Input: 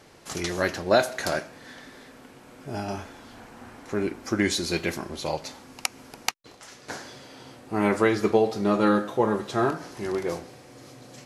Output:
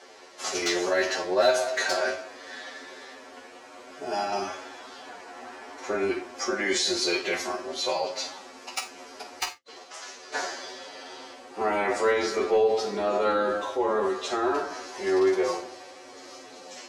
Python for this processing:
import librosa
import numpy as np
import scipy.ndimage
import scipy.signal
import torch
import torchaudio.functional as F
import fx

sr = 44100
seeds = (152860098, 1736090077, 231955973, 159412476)

p1 = fx.octave_divider(x, sr, octaves=2, level_db=1.0)
p2 = scipy.signal.sosfilt(scipy.signal.cheby1(2, 1.0, [480.0, 6600.0], 'bandpass', fs=sr, output='sos'), p1)
p3 = fx.over_compress(p2, sr, threshold_db=-30.0, ratio=-0.5)
p4 = p2 + (p3 * 10.0 ** (-0.5 / 20.0))
p5 = np.clip(p4, -10.0 ** (-12.5 / 20.0), 10.0 ** (-12.5 / 20.0))
p6 = p5 + fx.room_early_taps(p5, sr, ms=(11, 32), db=(-5.5, -13.5), dry=0)
p7 = fx.rev_gated(p6, sr, seeds[0], gate_ms=80, shape='falling', drr_db=6.0)
p8 = fx.stretch_vocoder(p7, sr, factor=1.5)
y = p8 * 10.0 ** (-4.0 / 20.0)